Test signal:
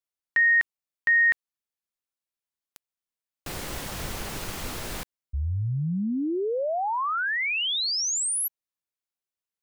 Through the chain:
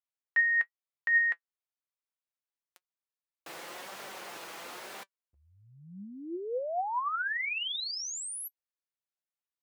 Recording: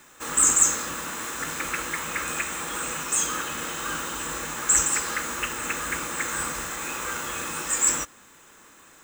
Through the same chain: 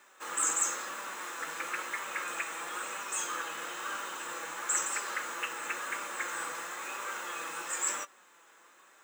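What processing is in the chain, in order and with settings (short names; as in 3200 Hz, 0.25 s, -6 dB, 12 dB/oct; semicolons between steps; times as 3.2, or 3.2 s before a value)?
HPF 490 Hz 12 dB/oct; high shelf 3700 Hz -8.5 dB; flange 1 Hz, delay 5 ms, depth 1.2 ms, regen +59%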